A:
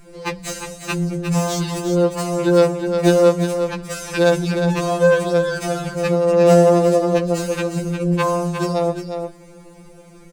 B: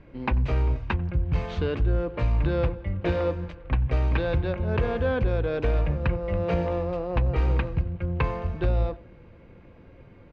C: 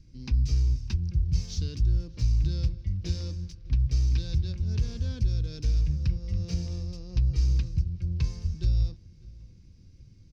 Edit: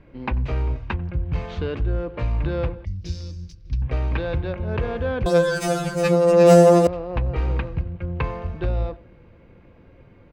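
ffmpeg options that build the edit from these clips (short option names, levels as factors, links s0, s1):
-filter_complex "[1:a]asplit=3[s0][s1][s2];[s0]atrim=end=2.852[s3];[2:a]atrim=start=2.848:end=3.822[s4];[s1]atrim=start=3.818:end=5.262[s5];[0:a]atrim=start=5.258:end=6.872[s6];[s2]atrim=start=6.868[s7];[s3][s4]acrossfade=d=0.004:c1=hsin:c2=hsin[s8];[s8][s5]acrossfade=d=0.004:c1=hsin:c2=hsin[s9];[s9][s6]acrossfade=d=0.004:c1=hsin:c2=hsin[s10];[s10][s7]acrossfade=d=0.004:c1=hsin:c2=hsin"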